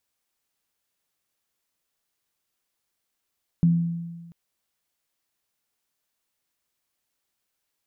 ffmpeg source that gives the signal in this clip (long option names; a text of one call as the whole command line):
ffmpeg -f lavfi -i "aevalsrc='0.211*pow(10,-3*t/1.38)*sin(2*PI*169*t)+0.0282*pow(10,-3*t/0.78)*sin(2*PI*255*t)':duration=0.69:sample_rate=44100" out.wav